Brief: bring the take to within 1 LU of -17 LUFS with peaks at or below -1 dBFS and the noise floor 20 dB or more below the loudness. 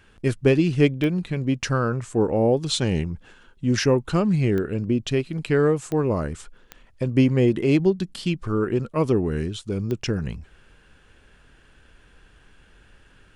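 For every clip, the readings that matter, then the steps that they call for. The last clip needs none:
clicks found 5; loudness -23.0 LUFS; peak level -5.0 dBFS; loudness target -17.0 LUFS
-> de-click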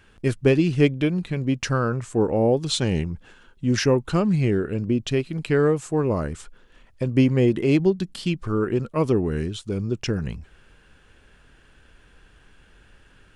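clicks found 0; loudness -23.0 LUFS; peak level -5.0 dBFS; loudness target -17.0 LUFS
-> trim +6 dB; peak limiter -1 dBFS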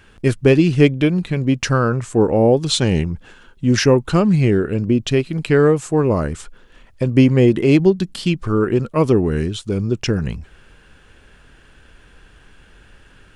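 loudness -17.0 LUFS; peak level -1.0 dBFS; noise floor -49 dBFS

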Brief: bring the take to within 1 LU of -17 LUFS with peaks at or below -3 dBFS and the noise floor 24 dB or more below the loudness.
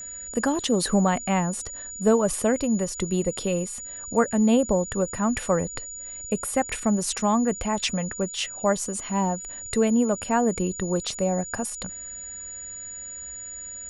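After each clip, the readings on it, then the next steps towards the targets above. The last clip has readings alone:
steady tone 6.9 kHz; tone level -35 dBFS; loudness -25.5 LUFS; peak level -8.0 dBFS; loudness target -17.0 LUFS
-> band-stop 6.9 kHz, Q 30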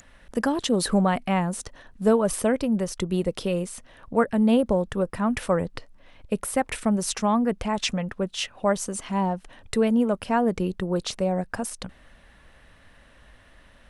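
steady tone not found; loudness -25.5 LUFS; peak level -8.0 dBFS; loudness target -17.0 LUFS
-> trim +8.5 dB; peak limiter -3 dBFS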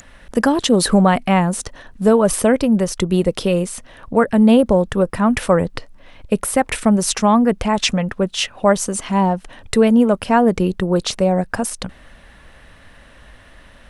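loudness -17.0 LUFS; peak level -3.0 dBFS; noise floor -46 dBFS

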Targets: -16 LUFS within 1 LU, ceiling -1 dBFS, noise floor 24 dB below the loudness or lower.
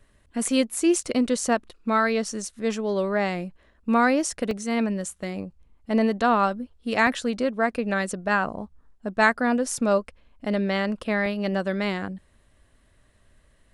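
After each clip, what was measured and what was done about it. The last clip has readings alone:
dropouts 3; longest dropout 1.5 ms; loudness -25.0 LUFS; peak level -5.0 dBFS; loudness target -16.0 LUFS
-> interpolate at 4.51/7.07/11.26 s, 1.5 ms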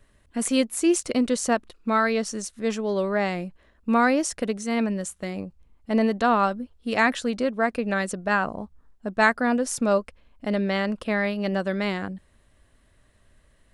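dropouts 0; loudness -25.0 LUFS; peak level -5.0 dBFS; loudness target -16.0 LUFS
-> trim +9 dB; peak limiter -1 dBFS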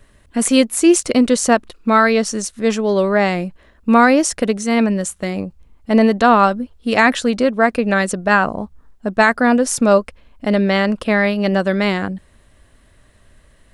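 loudness -16.0 LUFS; peak level -1.0 dBFS; noise floor -52 dBFS

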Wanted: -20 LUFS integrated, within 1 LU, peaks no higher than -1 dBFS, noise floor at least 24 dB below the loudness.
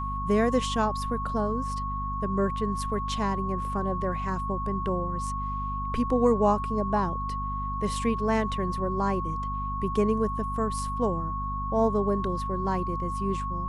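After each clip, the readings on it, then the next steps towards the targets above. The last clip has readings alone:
hum 50 Hz; highest harmonic 250 Hz; hum level -31 dBFS; steady tone 1.1 kHz; tone level -31 dBFS; loudness -28.0 LUFS; peak level -10.5 dBFS; loudness target -20.0 LUFS
-> hum notches 50/100/150/200/250 Hz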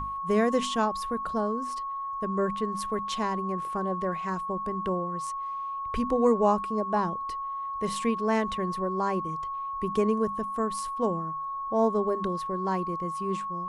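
hum not found; steady tone 1.1 kHz; tone level -31 dBFS
-> band-stop 1.1 kHz, Q 30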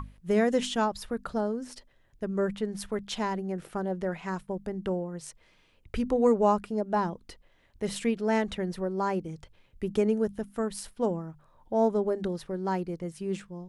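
steady tone not found; loudness -30.0 LUFS; peak level -11.5 dBFS; loudness target -20.0 LUFS
-> trim +10 dB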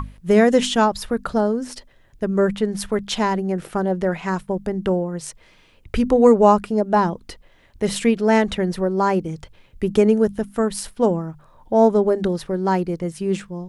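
loudness -20.0 LUFS; peak level -1.5 dBFS; noise floor -53 dBFS

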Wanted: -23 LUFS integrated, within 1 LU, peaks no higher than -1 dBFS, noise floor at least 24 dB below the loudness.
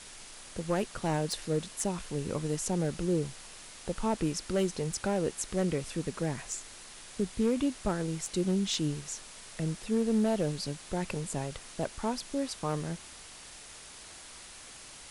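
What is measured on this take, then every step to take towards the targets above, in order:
clipped samples 0.4%; clipping level -21.0 dBFS; noise floor -49 dBFS; noise floor target -57 dBFS; loudness -33.0 LUFS; peak level -21.0 dBFS; loudness target -23.0 LUFS
-> clip repair -21 dBFS; noise print and reduce 8 dB; trim +10 dB

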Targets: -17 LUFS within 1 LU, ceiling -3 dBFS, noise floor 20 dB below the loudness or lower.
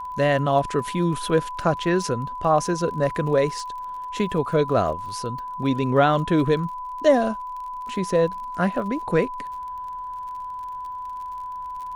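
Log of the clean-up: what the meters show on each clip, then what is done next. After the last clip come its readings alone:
tick rate 41 per s; steady tone 1 kHz; tone level -30 dBFS; loudness -24.0 LUFS; peak level -5.5 dBFS; loudness target -17.0 LUFS
-> de-click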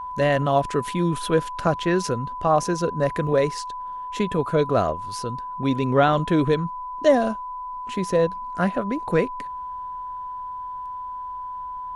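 tick rate 0.17 per s; steady tone 1 kHz; tone level -30 dBFS
-> band-stop 1 kHz, Q 30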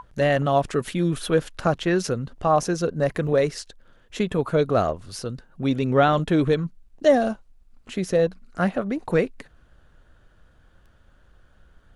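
steady tone not found; loudness -23.5 LUFS; peak level -6.0 dBFS; loudness target -17.0 LUFS
-> trim +6.5 dB; peak limiter -3 dBFS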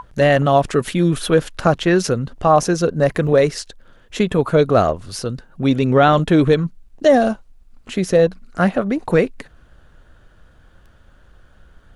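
loudness -17.0 LUFS; peak level -3.0 dBFS; noise floor -50 dBFS

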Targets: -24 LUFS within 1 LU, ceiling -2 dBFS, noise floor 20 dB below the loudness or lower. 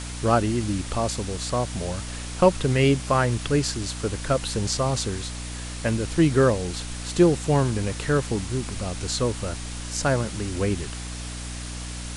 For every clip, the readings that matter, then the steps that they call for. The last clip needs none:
hum 60 Hz; highest harmonic 300 Hz; hum level -32 dBFS; noise floor -34 dBFS; noise floor target -45 dBFS; loudness -25.0 LUFS; peak level -5.5 dBFS; loudness target -24.0 LUFS
-> hum notches 60/120/180/240/300 Hz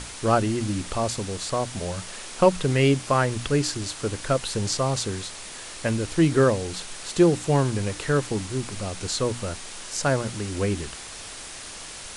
hum not found; noise floor -39 dBFS; noise floor target -45 dBFS
-> noise reduction 6 dB, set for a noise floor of -39 dBFS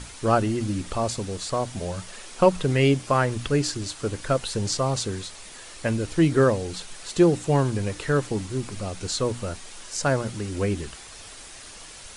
noise floor -43 dBFS; noise floor target -45 dBFS
-> noise reduction 6 dB, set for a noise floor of -43 dBFS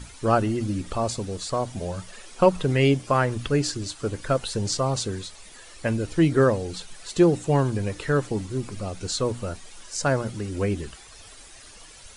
noise floor -47 dBFS; loudness -25.0 LUFS; peak level -4.5 dBFS; loudness target -24.0 LUFS
-> trim +1 dB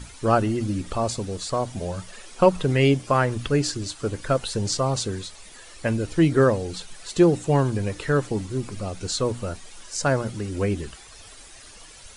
loudness -24.0 LUFS; peak level -3.5 dBFS; noise floor -46 dBFS

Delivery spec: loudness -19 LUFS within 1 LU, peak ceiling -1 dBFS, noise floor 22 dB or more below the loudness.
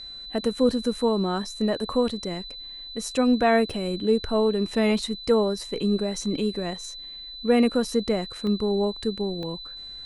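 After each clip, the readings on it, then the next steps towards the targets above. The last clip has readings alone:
dropouts 3; longest dropout 1.2 ms; steady tone 4 kHz; tone level -37 dBFS; loudness -25.0 LUFS; peak level -9.5 dBFS; loudness target -19.0 LUFS
-> interpolate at 3.70/8.47/9.43 s, 1.2 ms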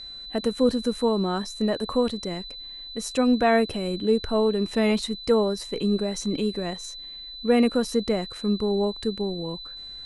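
dropouts 0; steady tone 4 kHz; tone level -37 dBFS
-> band-stop 4 kHz, Q 30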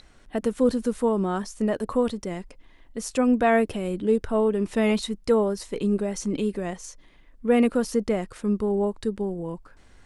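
steady tone not found; loudness -25.0 LUFS; peak level -9.5 dBFS; loudness target -19.0 LUFS
-> trim +6 dB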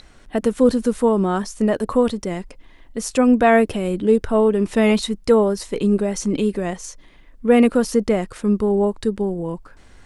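loudness -19.0 LUFS; peak level -3.5 dBFS; noise floor -48 dBFS

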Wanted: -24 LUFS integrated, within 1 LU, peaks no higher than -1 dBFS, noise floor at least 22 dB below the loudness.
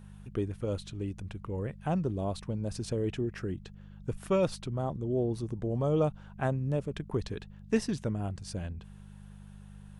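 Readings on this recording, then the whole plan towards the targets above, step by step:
hum 50 Hz; highest harmonic 200 Hz; hum level -49 dBFS; loudness -33.5 LUFS; peak level -14.5 dBFS; loudness target -24.0 LUFS
-> de-hum 50 Hz, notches 4; trim +9.5 dB

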